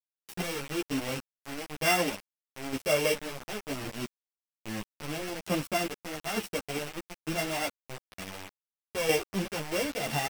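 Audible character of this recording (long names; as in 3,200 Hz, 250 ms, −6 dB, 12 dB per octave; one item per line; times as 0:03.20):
a buzz of ramps at a fixed pitch in blocks of 16 samples
chopped level 1.1 Hz, depth 65%, duty 45%
a quantiser's noise floor 6 bits, dither none
a shimmering, thickened sound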